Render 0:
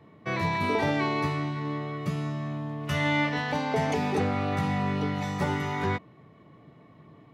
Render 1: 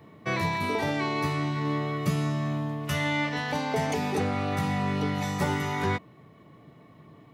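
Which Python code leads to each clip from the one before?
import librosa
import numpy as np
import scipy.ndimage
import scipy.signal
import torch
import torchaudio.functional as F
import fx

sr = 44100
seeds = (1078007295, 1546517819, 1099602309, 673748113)

y = fx.high_shelf(x, sr, hz=7000.0, db=11.5)
y = fx.rider(y, sr, range_db=4, speed_s=0.5)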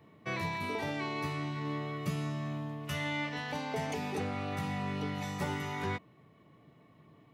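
y = fx.peak_eq(x, sr, hz=2700.0, db=3.0, octaves=0.57)
y = y * librosa.db_to_amplitude(-8.0)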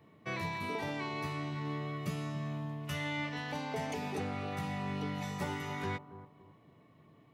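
y = fx.echo_bbd(x, sr, ms=279, stages=2048, feedback_pct=32, wet_db=-13.5)
y = y * librosa.db_to_amplitude(-2.0)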